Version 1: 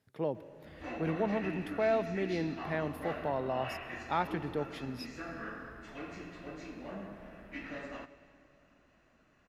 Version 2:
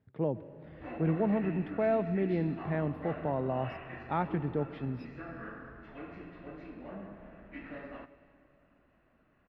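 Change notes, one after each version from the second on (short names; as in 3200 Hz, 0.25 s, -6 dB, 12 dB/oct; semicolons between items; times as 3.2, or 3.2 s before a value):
speech: add low shelf 290 Hz +9.5 dB; master: add air absorption 410 m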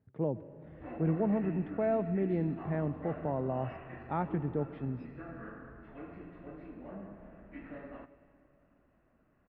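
master: add tape spacing loss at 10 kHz 29 dB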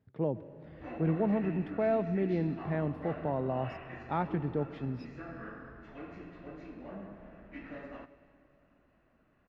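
master: remove air absorption 410 m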